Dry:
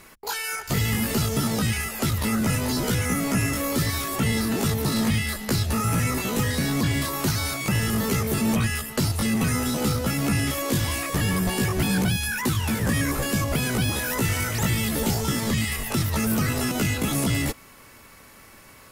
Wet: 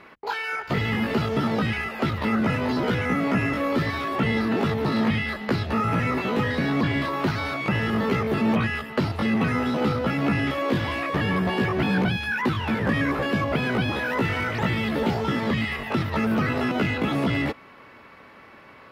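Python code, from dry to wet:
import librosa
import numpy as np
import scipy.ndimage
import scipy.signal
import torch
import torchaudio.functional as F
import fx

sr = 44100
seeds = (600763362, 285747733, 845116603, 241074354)

y = fx.highpass(x, sr, hz=300.0, slope=6)
y = fx.air_absorb(y, sr, metres=370.0)
y = y * librosa.db_to_amplitude(6.0)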